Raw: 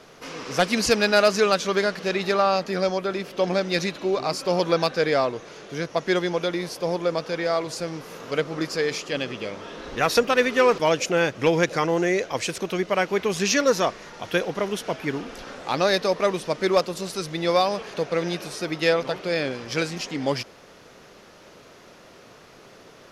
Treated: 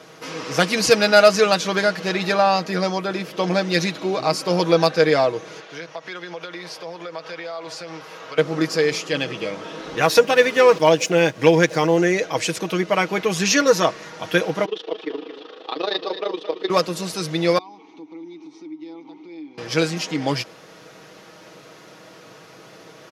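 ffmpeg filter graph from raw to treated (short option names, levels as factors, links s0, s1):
-filter_complex "[0:a]asettb=1/sr,asplit=3[s0][s1][s2];[s0]atrim=end=5.604[s3];[s1]atrim=start=5.6:end=8.38,asetpts=PTS-STARTPTS,afade=t=in:d=0.004:c=qsin,afade=t=out:st=2.776:d=0.004:c=qsin,acrossover=split=560 5500:gain=0.251 1 0.224[s4][s5][s6];[s4][s5][s6]amix=inputs=3:normalize=0,bandreject=f=50:t=h:w=6,bandreject=f=100:t=h:w=6,bandreject=f=150:t=h:w=6,bandreject=f=200:t=h:w=6,bandreject=f=250:t=h:w=6,acompressor=threshold=0.02:ratio=4:attack=3.2:release=140:knee=1:detection=peak[s7];[s2]atrim=start=8.376[s8];[s3][s7]acrossfade=d=0.004:c1=hsin:c2=qsin[s9];[s9][s8]acrossfade=d=0.004:c1=qsin:c2=hsin,asettb=1/sr,asplit=3[s10][s11][s12];[s10]atrim=end=10.014[s13];[s11]atrim=start=10.01:end=11.98,asetpts=PTS-STARTPTS,afade=t=in:d=0.004:c=qsin,afade=t=out:st=1.966:d=0.004:c=qsin,aeval=exprs='sgn(val(0))*max(abs(val(0))-0.00422,0)':c=same,bandreject=f=1300:w=15[s14];[s12]atrim=start=11.976[s15];[s13][s14]acrossfade=d=0.004:c1=hsin:c2=qsin[s16];[s16][s15]acrossfade=d=0.004:c1=qsin:c2=hsin,asettb=1/sr,asplit=3[s17][s18][s19];[s17]atrim=end=14.654[s20];[s18]atrim=start=14.65:end=16.7,asetpts=PTS-STARTPTS,afade=t=in:d=0.004:c=qsin,afade=t=out:st=2.046:d=0.004:c=qsin,tremolo=f=26:d=0.919,highpass=f=310:w=0.5412,highpass=f=310:w=1.3066,equalizer=f=430:t=q:w=4:g=6,equalizer=f=620:t=q:w=4:g=-7,equalizer=f=910:t=q:w=4:g=-4,equalizer=f=1500:t=q:w=4:g=-9,equalizer=f=2200:t=q:w=4:g=-9,equalizer=f=3500:t=q:w=4:g=5,lowpass=f=4000:w=0.5412,lowpass=f=4000:w=1.3066,aecho=1:1:220:0.282,atrim=end_sample=90405[s21];[s19]atrim=start=16.696[s22];[s20][s21]acrossfade=d=0.004:c1=hsin:c2=qsin[s23];[s23][s22]acrossfade=d=0.004:c1=qsin:c2=hsin,asettb=1/sr,asplit=3[s24][s25][s26];[s24]atrim=end=17.584[s27];[s25]atrim=start=17.58:end=19.58,asetpts=PTS-STARTPTS,afade=t=in:d=0.004:c=qsin,afade=t=out:st=1.996:d=0.004:c=qsin,asplit=3[s28][s29][s30];[s28]bandpass=f=300:t=q:w=8,volume=1[s31];[s29]bandpass=f=870:t=q:w=8,volume=0.501[s32];[s30]bandpass=f=2240:t=q:w=8,volume=0.355[s33];[s31][s32][s33]amix=inputs=3:normalize=0,highpass=120,equalizer=f=190:t=q:w=4:g=-4,equalizer=f=310:t=q:w=4:g=6,equalizer=f=2600:t=q:w=4:g=-8,equalizer=f=3700:t=q:w=4:g=7,equalizer=f=6000:t=q:w=4:g=9,lowpass=f=8500:w=0.5412,lowpass=f=8500:w=1.3066,acompressor=threshold=0.00562:ratio=2.5:attack=3.2:release=140:knee=1:detection=peak[s34];[s26]atrim=start=19.576[s35];[s27][s34]acrossfade=d=0.004:c1=hsin:c2=qsin[s36];[s36][s35]acrossfade=d=0.004:c1=qsin:c2=hsin,highpass=93,aecho=1:1:6.3:0.57,volume=1.41"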